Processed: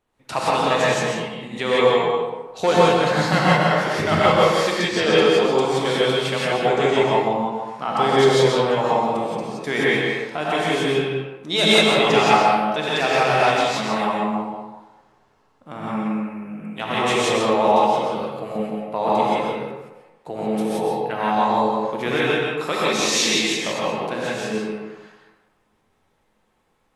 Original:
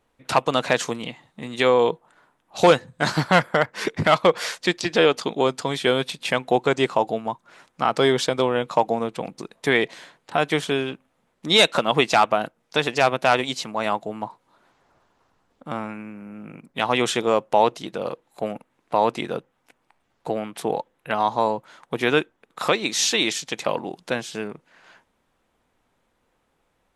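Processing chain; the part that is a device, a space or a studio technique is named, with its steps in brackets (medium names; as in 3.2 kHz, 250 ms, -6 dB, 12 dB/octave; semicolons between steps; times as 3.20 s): gated-style reverb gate 200 ms rising, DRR -6 dB; bathroom (reverberation RT60 1.1 s, pre-delay 119 ms, DRR 1 dB); trim -6.5 dB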